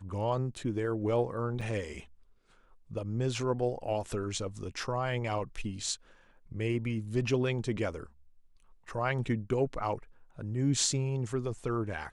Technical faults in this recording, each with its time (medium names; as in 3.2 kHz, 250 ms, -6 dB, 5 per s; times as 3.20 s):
1.61–1.62 s: dropout 5.1 ms